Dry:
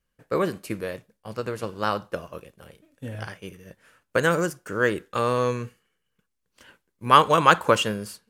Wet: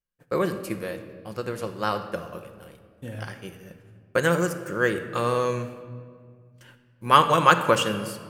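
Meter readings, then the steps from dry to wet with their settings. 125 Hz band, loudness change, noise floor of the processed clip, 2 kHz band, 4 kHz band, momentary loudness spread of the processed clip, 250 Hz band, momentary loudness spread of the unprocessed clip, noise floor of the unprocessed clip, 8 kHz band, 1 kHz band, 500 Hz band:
+0.5 dB, -0.5 dB, -59 dBFS, -0.5 dB, -0.5 dB, 22 LU, 0.0 dB, 22 LU, -77 dBFS, +0.5 dB, -0.5 dB, -0.5 dB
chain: gate -53 dBFS, range -14 dB; high shelf 11000 Hz +5.5 dB; shoebox room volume 3300 m³, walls mixed, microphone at 0.91 m; gain -1.5 dB

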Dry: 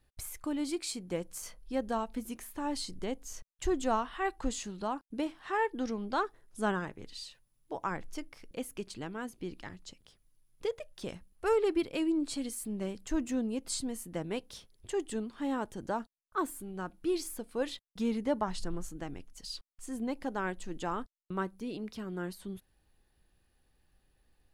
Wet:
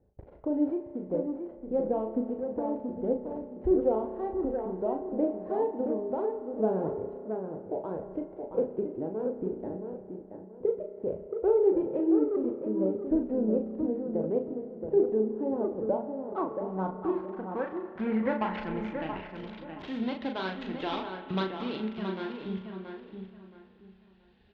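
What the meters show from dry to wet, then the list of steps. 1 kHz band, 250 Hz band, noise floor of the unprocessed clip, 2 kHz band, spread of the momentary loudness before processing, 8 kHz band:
0.0 dB, +5.0 dB, -74 dBFS, -3.0 dB, 12 LU, under -30 dB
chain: switching dead time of 0.17 ms; HPF 54 Hz 12 dB/oct; low shelf 330 Hz -4.5 dB; notch 1200 Hz, Q 9.8; compressor 2:1, threshold -38 dBFS, peak gain reduction 7.5 dB; tremolo triangle 0.62 Hz, depth 35%; low-pass sweep 530 Hz -> 3600 Hz, 15.76–19.63; phaser 1.6 Hz, delay 3.8 ms, feedback 30%; air absorption 200 m; doubler 37 ms -5.5 dB; tape echo 0.675 s, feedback 28%, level -5.5 dB, low-pass 2200 Hz; spring tank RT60 2.4 s, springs 32 ms, chirp 50 ms, DRR 10 dB; gain +8 dB

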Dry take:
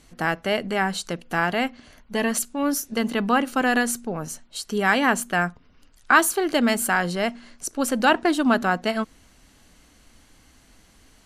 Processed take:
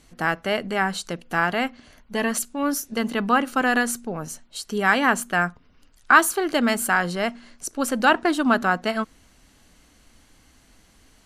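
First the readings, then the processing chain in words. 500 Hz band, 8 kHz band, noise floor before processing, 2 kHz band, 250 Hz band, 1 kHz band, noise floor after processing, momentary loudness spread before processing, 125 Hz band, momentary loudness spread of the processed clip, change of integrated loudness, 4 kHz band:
-0.5 dB, -1.0 dB, -56 dBFS, +1.5 dB, -1.0 dB, +1.0 dB, -57 dBFS, 11 LU, -1.0 dB, 12 LU, +0.5 dB, -0.5 dB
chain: dynamic EQ 1300 Hz, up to +4 dB, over -34 dBFS, Q 1.7; gain -1 dB

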